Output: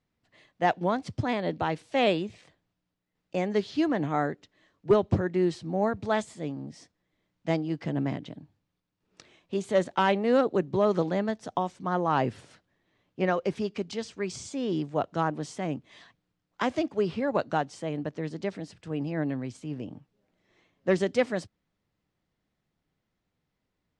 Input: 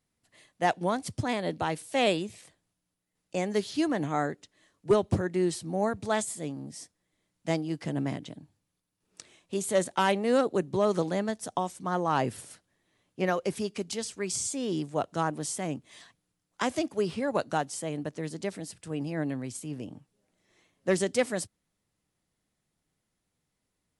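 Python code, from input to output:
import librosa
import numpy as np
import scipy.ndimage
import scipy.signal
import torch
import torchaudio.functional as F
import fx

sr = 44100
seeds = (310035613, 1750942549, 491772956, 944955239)

y = fx.air_absorb(x, sr, metres=150.0)
y = F.gain(torch.from_numpy(y), 2.0).numpy()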